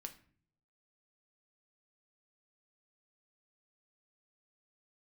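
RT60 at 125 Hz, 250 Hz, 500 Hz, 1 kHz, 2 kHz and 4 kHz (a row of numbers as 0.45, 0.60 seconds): 0.95, 0.75, 0.55, 0.45, 0.45, 0.35 seconds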